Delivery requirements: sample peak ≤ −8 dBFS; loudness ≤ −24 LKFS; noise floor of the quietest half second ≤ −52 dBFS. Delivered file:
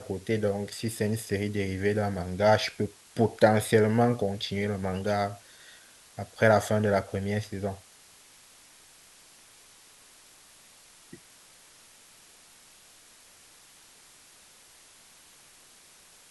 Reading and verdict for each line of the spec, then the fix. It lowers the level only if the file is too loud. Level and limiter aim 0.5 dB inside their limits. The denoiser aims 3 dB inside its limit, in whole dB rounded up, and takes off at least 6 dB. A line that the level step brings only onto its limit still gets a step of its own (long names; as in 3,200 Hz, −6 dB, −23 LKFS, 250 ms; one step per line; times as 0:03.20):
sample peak −7.5 dBFS: out of spec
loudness −27.0 LKFS: in spec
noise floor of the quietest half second −55 dBFS: in spec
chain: brickwall limiter −8.5 dBFS